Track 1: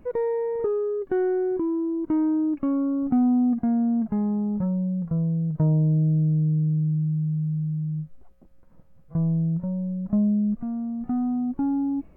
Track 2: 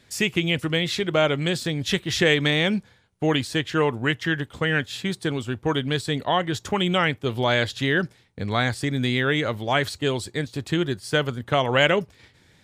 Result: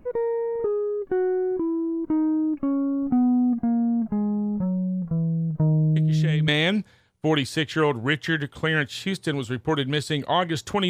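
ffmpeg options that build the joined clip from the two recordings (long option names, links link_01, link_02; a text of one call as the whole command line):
ffmpeg -i cue0.wav -i cue1.wav -filter_complex "[1:a]asplit=2[link_01][link_02];[0:a]apad=whole_dur=10.89,atrim=end=10.89,atrim=end=6.482[link_03];[link_02]atrim=start=2.458:end=6.87[link_04];[link_01]atrim=start=1.94:end=2.46,asetpts=PTS-STARTPTS,volume=-14dB,afade=type=in:duration=0.004:curve=hsin,afade=type=out:start_time=0.516:duration=0.004:curve=hsin,adelay=5960[link_05];[link_03][link_04]acrossfade=duration=0.004:curve1=hsin:curve2=hsin[link_06];[link_06][link_05]amix=inputs=2:normalize=0" out.wav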